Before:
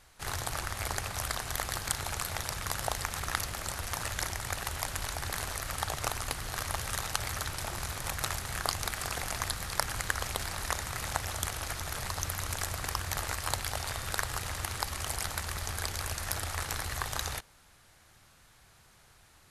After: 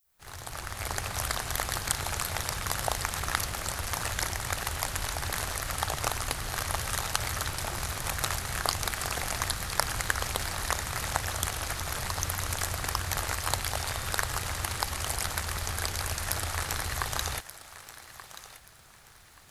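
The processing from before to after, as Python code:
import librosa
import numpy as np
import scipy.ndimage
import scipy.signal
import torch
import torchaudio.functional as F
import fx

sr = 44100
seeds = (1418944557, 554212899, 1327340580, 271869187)

p1 = fx.fade_in_head(x, sr, length_s=1.16)
p2 = fx.dmg_noise_colour(p1, sr, seeds[0], colour='violet', level_db=-75.0)
p3 = p2 + fx.echo_thinned(p2, sr, ms=1180, feedback_pct=28, hz=420.0, wet_db=-14, dry=0)
y = p3 * librosa.db_to_amplitude(3.0)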